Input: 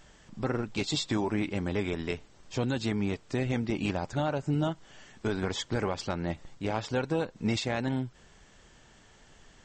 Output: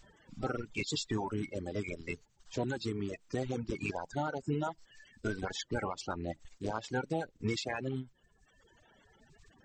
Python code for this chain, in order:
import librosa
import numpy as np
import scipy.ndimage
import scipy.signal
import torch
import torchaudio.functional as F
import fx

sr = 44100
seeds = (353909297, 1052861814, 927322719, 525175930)

y = fx.spec_quant(x, sr, step_db=30)
y = fx.dereverb_blind(y, sr, rt60_s=1.3)
y = F.gain(torch.from_numpy(y), -3.5).numpy()